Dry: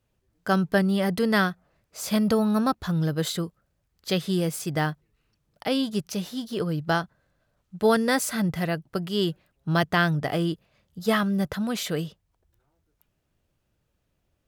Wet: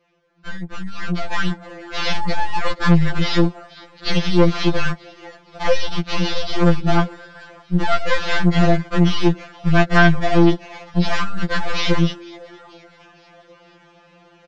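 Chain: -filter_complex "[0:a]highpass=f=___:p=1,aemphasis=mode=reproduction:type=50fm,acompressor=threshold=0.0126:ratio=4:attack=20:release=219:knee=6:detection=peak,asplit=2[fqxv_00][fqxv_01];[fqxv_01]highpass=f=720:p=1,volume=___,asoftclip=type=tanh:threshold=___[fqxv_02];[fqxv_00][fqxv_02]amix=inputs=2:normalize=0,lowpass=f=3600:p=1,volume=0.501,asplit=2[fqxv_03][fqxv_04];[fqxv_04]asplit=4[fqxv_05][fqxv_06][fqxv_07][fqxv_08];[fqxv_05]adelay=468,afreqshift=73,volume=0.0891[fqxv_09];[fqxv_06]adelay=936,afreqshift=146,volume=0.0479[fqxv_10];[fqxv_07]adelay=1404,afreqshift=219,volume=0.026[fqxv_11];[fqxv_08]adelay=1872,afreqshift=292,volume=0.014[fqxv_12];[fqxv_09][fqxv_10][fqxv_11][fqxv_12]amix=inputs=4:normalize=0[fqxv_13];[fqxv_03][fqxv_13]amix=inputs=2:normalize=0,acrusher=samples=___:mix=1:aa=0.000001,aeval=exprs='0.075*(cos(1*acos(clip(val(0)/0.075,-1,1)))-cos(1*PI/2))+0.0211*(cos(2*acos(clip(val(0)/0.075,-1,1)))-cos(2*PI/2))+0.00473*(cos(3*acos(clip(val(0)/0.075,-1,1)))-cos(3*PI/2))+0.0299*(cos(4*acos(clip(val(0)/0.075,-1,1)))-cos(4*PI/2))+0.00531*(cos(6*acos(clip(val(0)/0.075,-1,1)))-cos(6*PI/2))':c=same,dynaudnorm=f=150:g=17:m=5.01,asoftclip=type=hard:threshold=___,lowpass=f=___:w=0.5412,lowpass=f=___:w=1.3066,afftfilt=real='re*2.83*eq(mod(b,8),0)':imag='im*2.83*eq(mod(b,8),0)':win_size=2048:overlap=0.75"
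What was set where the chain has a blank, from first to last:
48, 28.2, 0.075, 5, 0.299, 5100, 5100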